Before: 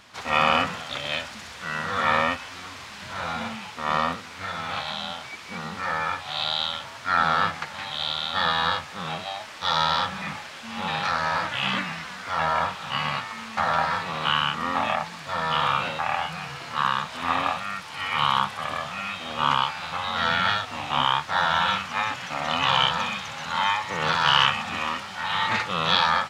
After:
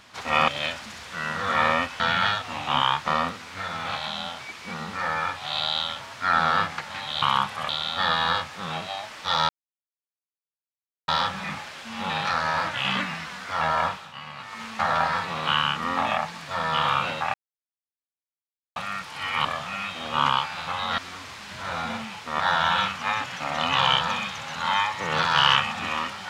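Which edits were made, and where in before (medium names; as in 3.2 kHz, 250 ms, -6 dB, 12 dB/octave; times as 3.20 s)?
0.48–0.97 s: delete
2.49–3.91 s: swap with 20.23–21.30 s
9.86 s: insert silence 1.59 s
12.65–13.40 s: dip -12.5 dB, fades 0.25 s
16.12–17.54 s: mute
18.23–18.70 s: move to 8.06 s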